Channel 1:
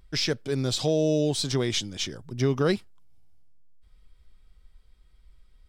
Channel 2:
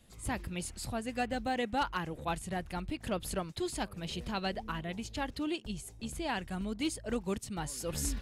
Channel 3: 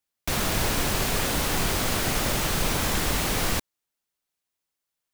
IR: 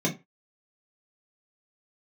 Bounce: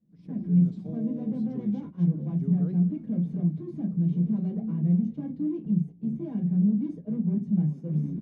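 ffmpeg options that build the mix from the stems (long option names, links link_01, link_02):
-filter_complex "[0:a]volume=-15.5dB,asplit=2[link_01][link_02];[link_02]volume=-16.5dB[link_03];[1:a]asoftclip=type=hard:threshold=-38dB,volume=-5.5dB,asplit=3[link_04][link_05][link_06];[link_05]volume=-5dB[link_07];[link_06]volume=-14dB[link_08];[2:a]alimiter=limit=-22dB:level=0:latency=1,acrusher=bits=3:mix=0:aa=0.5,adelay=250,volume=-17dB[link_09];[link_04][link_09]amix=inputs=2:normalize=0,acompressor=threshold=-53dB:ratio=6,volume=0dB[link_10];[3:a]atrim=start_sample=2205[link_11];[link_07][link_11]afir=irnorm=-1:irlink=0[link_12];[link_03][link_08]amix=inputs=2:normalize=0,aecho=0:1:215:1[link_13];[link_01][link_10][link_12][link_13]amix=inputs=4:normalize=0,agate=range=-8dB:threshold=-40dB:ratio=16:detection=peak,dynaudnorm=framelen=230:gausssize=3:maxgain=7.5dB,bandpass=frequency=190:width_type=q:width=2:csg=0"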